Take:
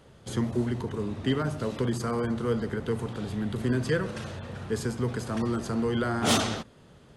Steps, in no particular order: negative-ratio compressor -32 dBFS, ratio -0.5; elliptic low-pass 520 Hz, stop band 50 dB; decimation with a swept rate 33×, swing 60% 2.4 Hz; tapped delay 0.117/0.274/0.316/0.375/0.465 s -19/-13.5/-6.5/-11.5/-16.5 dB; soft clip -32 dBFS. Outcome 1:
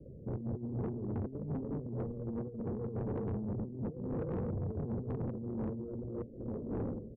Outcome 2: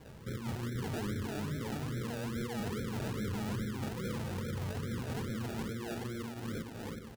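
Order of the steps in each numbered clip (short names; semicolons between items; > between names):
tapped delay > decimation with a swept rate > negative-ratio compressor > elliptic low-pass > soft clip; negative-ratio compressor > tapped delay > soft clip > elliptic low-pass > decimation with a swept rate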